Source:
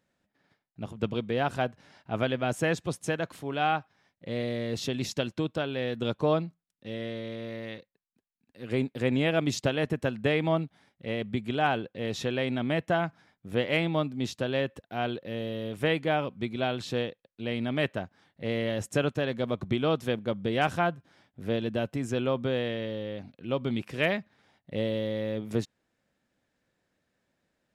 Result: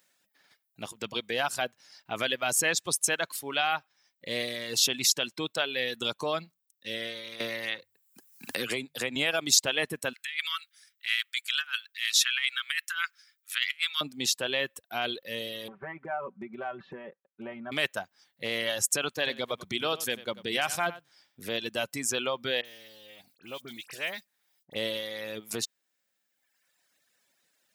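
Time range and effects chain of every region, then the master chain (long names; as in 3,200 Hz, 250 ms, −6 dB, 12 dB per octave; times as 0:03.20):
0:07.40–0:09.16: mains-hum notches 50/100/150 Hz + multiband upward and downward compressor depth 100%
0:10.13–0:14.01: Butterworth high-pass 1,300 Hz 48 dB per octave + compressor whose output falls as the input rises −37 dBFS, ratio −0.5
0:15.68–0:17.72: low-pass filter 1,500 Hz 24 dB per octave + downward compressor 16 to 1, threshold −32 dBFS + comb filter 5.2 ms, depth 73%
0:19.08–0:21.48: high-pass filter 41 Hz + single-tap delay 93 ms −10 dB
0:22.61–0:24.76: mu-law and A-law mismatch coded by A + downward compressor 2 to 1, threshold −43 dBFS + all-pass dispersion highs, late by 44 ms, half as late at 2,800 Hz
whole clip: reverb reduction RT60 1.4 s; brickwall limiter −21.5 dBFS; spectral tilt +4.5 dB per octave; level +4 dB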